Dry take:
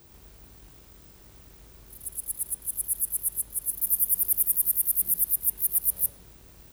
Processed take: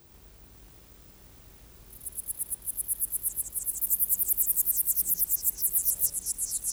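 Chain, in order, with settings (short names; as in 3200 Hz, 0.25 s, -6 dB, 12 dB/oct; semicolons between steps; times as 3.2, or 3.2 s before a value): echoes that change speed 0.543 s, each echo -5 st, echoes 3, each echo -6 dB; gain -2 dB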